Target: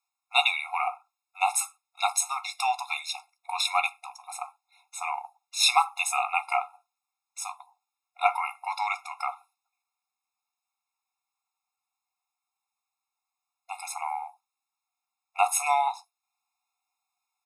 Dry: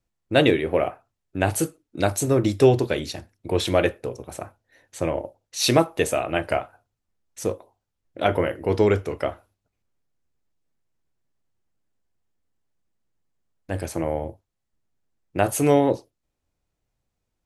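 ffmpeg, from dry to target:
ffmpeg -i in.wav -filter_complex "[0:a]asplit=2[link_01][link_02];[link_02]adelay=14,volume=-14dB[link_03];[link_01][link_03]amix=inputs=2:normalize=0,afftfilt=real='re*eq(mod(floor(b*sr/1024/700),2),1)':imag='im*eq(mod(floor(b*sr/1024/700),2),1)':win_size=1024:overlap=0.75,volume=4.5dB" out.wav

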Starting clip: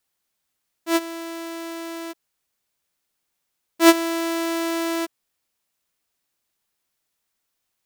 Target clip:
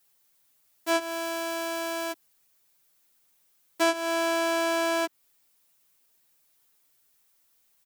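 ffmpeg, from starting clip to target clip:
ffmpeg -i in.wav -filter_complex "[0:a]acrossover=split=9200[link_01][link_02];[link_02]acompressor=threshold=-44dB:ratio=4:attack=1:release=60[link_03];[link_01][link_03]amix=inputs=2:normalize=0,highshelf=frequency=9300:gain=9.5,aecho=1:1:7.3:0.89,asplit=2[link_04][link_05];[link_05]alimiter=limit=-9dB:level=0:latency=1:release=385,volume=1dB[link_06];[link_04][link_06]amix=inputs=2:normalize=0,acrossover=split=200|2800[link_07][link_08][link_09];[link_07]acompressor=threshold=-48dB:ratio=4[link_10];[link_08]acompressor=threshold=-17dB:ratio=4[link_11];[link_09]acompressor=threshold=-29dB:ratio=4[link_12];[link_10][link_11][link_12]amix=inputs=3:normalize=0,volume=-5dB" out.wav

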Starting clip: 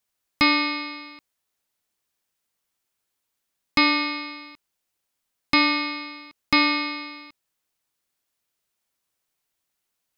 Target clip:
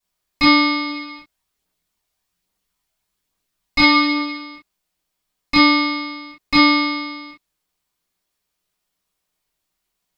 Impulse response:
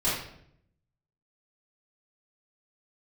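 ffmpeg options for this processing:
-filter_complex "[0:a]asplit=3[link_01][link_02][link_03];[link_01]afade=type=out:start_time=0.86:duration=0.02[link_04];[link_02]aphaser=in_gain=1:out_gain=1:delay=1.5:decay=0.41:speed=1.2:type=triangular,afade=type=in:start_time=0.86:duration=0.02,afade=type=out:start_time=4.37:duration=0.02[link_05];[link_03]afade=type=in:start_time=4.37:duration=0.02[link_06];[link_04][link_05][link_06]amix=inputs=3:normalize=0[link_07];[1:a]atrim=start_sample=2205,atrim=end_sample=3087[link_08];[link_07][link_08]afir=irnorm=-1:irlink=0,volume=-6dB"

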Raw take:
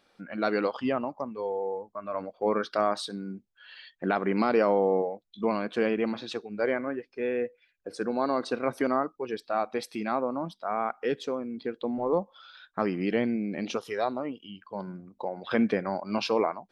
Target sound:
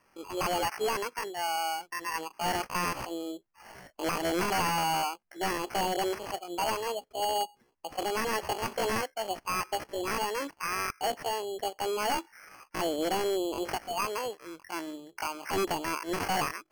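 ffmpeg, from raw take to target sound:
ffmpeg -i in.wav -af "acrusher=samples=20:mix=1:aa=0.000001,aeval=exprs='0.075*(abs(mod(val(0)/0.075+3,4)-2)-1)':channel_layout=same,asetrate=74167,aresample=44100,atempo=0.594604" out.wav

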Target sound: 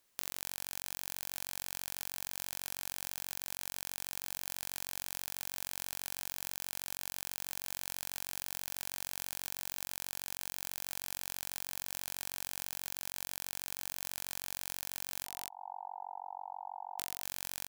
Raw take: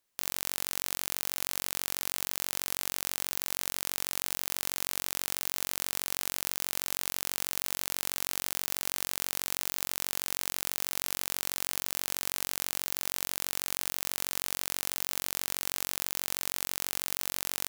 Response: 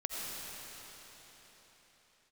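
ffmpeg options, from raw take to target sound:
-filter_complex "[0:a]asettb=1/sr,asplit=3[link_01][link_02][link_03];[link_01]atrim=end=15.254[link_04];[link_02]atrim=start=15.25:end=16.99,asetpts=PTS-STARTPTS,afade=type=in:duration=0.004:curve=qsin,afade=type=out:start_time=1.736:duration=0.004:curve=qsin,asuperpass=centerf=830:order=8:qfactor=3.4[link_05];[link_03]atrim=start=16.986[link_06];[link_04][link_05]acrossfade=duration=0.004:curve1=hsin:curve2=qsin[link_07];[link_07][link_06]acrossfade=duration=0.004:curve1=qsin:curve2=hsin,aecho=1:1:237:0.708,acompressor=threshold=-37dB:ratio=16,volume=5dB"

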